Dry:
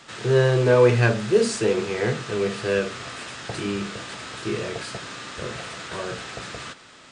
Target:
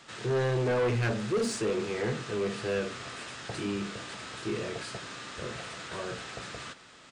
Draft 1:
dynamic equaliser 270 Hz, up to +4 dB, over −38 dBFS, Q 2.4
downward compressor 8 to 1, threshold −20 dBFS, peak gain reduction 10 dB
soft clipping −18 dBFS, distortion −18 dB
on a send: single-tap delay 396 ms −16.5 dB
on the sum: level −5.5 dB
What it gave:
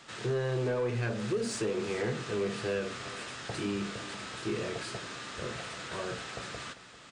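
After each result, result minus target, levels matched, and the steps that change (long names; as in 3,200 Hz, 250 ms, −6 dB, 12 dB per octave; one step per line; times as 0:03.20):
downward compressor: peak gain reduction +10 dB; echo-to-direct +9.5 dB
remove: downward compressor 8 to 1, threshold −20 dBFS, peak gain reduction 10 dB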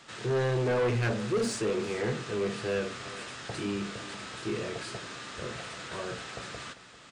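echo-to-direct +9.5 dB
change: single-tap delay 396 ms −26 dB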